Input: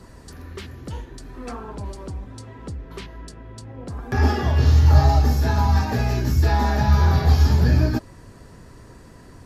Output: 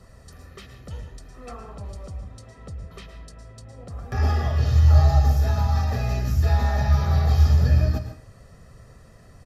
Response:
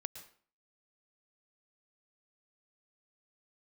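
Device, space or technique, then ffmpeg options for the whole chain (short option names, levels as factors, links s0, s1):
microphone above a desk: -filter_complex "[0:a]aecho=1:1:1.6:0.59[s0];[1:a]atrim=start_sample=2205[s1];[s0][s1]afir=irnorm=-1:irlink=0,volume=0.668"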